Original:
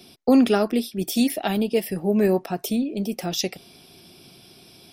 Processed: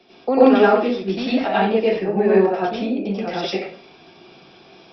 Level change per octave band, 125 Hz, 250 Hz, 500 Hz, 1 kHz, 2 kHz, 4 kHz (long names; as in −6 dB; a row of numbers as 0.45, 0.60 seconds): +0.5, +1.0, +7.0, +9.5, +8.0, 0.0 decibels